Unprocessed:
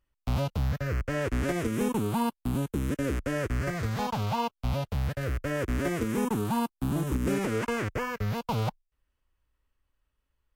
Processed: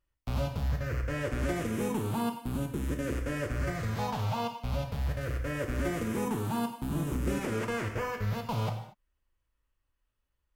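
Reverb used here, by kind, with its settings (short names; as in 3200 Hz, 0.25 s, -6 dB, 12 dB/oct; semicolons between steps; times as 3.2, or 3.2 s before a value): non-linear reverb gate 0.26 s falling, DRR 3 dB; gain -4.5 dB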